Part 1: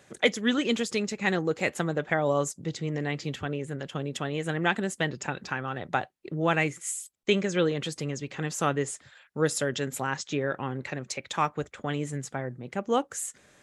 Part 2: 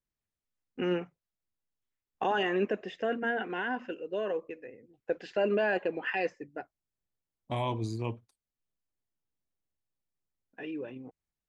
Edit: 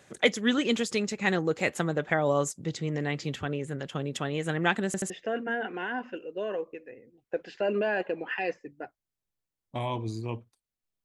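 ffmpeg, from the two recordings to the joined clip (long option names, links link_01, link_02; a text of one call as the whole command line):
ffmpeg -i cue0.wav -i cue1.wav -filter_complex "[0:a]apad=whole_dur=11.04,atrim=end=11.04,asplit=3[link_01][link_02][link_03];[link_01]atrim=end=4.942[link_04];[link_02]atrim=start=4.858:end=4.942[link_05];[link_03]atrim=start=4.858:end=4.942[link_06];[1:a]atrim=start=2.858:end=8.8[link_07];[link_04][link_05]acrossfade=duration=0.004:curve1=hsin:curve2=hsin[link_08];[link_08][link_06]acrossfade=duration=0.004:curve1=hsin:curve2=hsin[link_09];[link_09][link_07]acrossfade=duration=0.004:curve1=hsin:curve2=hsin" out.wav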